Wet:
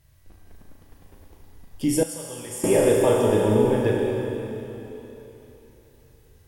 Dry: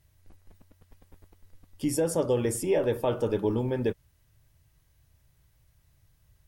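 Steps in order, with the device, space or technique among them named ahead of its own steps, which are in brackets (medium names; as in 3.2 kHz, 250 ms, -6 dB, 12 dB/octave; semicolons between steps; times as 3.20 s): tunnel (flutter echo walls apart 6.4 m, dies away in 0.4 s; reverberation RT60 3.5 s, pre-delay 69 ms, DRR 0 dB); 2.03–2.64 s: amplifier tone stack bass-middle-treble 5-5-5; trim +4 dB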